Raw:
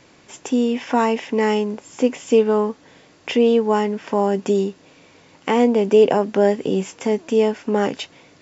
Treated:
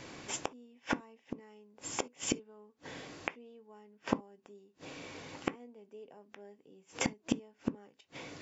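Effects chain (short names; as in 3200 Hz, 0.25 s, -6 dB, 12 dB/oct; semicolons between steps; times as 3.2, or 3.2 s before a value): flipped gate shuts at -18 dBFS, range -40 dB; on a send: reverb, pre-delay 3 ms, DRR 12.5 dB; on the sum: gain +2 dB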